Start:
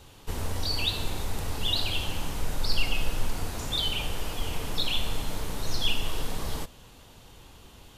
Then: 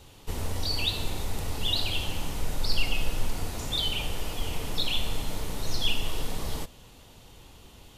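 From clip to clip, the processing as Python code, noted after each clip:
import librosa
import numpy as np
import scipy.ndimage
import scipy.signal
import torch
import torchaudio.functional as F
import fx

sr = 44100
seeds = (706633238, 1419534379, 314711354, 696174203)

y = fx.peak_eq(x, sr, hz=1200.0, db=-2.5, octaves=0.77)
y = fx.notch(y, sr, hz=1600.0, q=19.0)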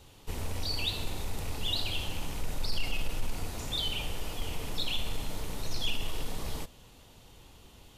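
y = fx.rattle_buzz(x, sr, strikes_db=-31.0, level_db=-32.0)
y = 10.0 ** (-15.0 / 20.0) * np.tanh(y / 10.0 ** (-15.0 / 20.0))
y = y * librosa.db_to_amplitude(-3.5)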